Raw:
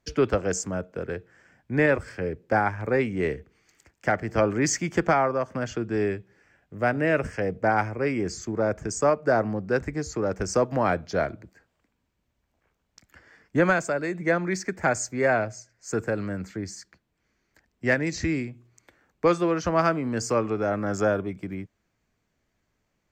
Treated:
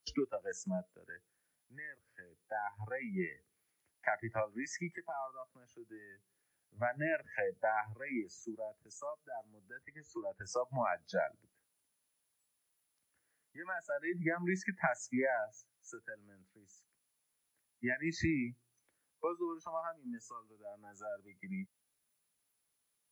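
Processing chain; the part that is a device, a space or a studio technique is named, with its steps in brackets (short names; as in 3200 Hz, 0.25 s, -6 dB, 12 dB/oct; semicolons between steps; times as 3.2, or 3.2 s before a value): medium wave at night (BPF 100–3800 Hz; compressor 10:1, threshold -29 dBFS, peak gain reduction 14 dB; tremolo 0.27 Hz, depth 59%; whine 10000 Hz -61 dBFS; white noise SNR 24 dB); spectral noise reduction 23 dB; 9.83–10.43 high shelf 4400 Hz -7 dB; gain +1 dB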